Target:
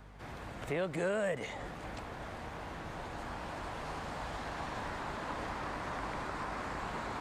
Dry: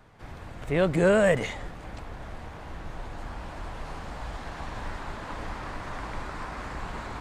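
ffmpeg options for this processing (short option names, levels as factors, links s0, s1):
-filter_complex "[0:a]highpass=f=160:p=1,aeval=exprs='val(0)+0.00224*(sin(2*PI*50*n/s)+sin(2*PI*2*50*n/s)/2+sin(2*PI*3*50*n/s)/3+sin(2*PI*4*50*n/s)/4+sin(2*PI*5*50*n/s)/5)':c=same,acrossover=split=520|1100[s0][s1][s2];[s0]acompressor=threshold=0.0112:ratio=4[s3];[s1]acompressor=threshold=0.0112:ratio=4[s4];[s2]acompressor=threshold=0.00708:ratio=4[s5];[s3][s4][s5]amix=inputs=3:normalize=0"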